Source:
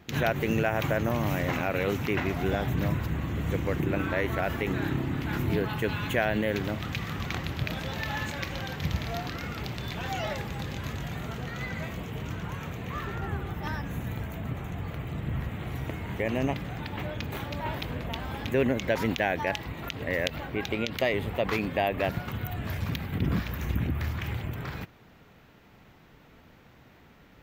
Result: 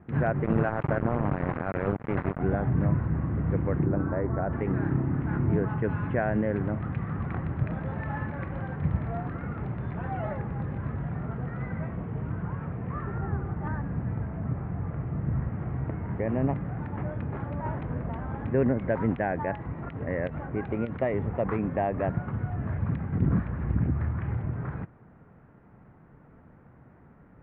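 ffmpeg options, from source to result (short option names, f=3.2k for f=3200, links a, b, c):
-filter_complex "[0:a]asettb=1/sr,asplit=3[a][b][c];[a]atrim=end=0.444[d];[b]atrim=start=0.44:end=2.4,asetpts=PTS-STARTPTS,afade=t=in:d=0.004:c=qsin,afade=t=out:st=1.956:d=0.004:c=qsin,acrusher=bits=3:mix=0:aa=0.5[e];[c]atrim=start=2.396[f];[d][e]acrossfade=d=0.004:c1=hsin:c2=qsin[g];[g][f]acrossfade=d=0.004:c1=qsin:c2=hsin,asettb=1/sr,asplit=3[h][i][j];[h]atrim=end=3.864[k];[i]atrim=start=3.86:end=4.53,asetpts=PTS-STARTPTS,afade=t=in:d=0.004:c=qsin,afade=t=out:st=0.666:d=0.004:c=qsin,lowpass=1.3k[l];[j]atrim=start=4.526[m];[k][l]acrossfade=d=0.004:c1=hsin:c2=qsin[n];[n][m]acrossfade=d=0.004:c1=qsin:c2=hsin,lowpass=f=1.6k:w=0.5412,lowpass=f=1.6k:w=1.3066,equalizer=f=140:t=o:w=1.7:g=5.5,volume=-1dB"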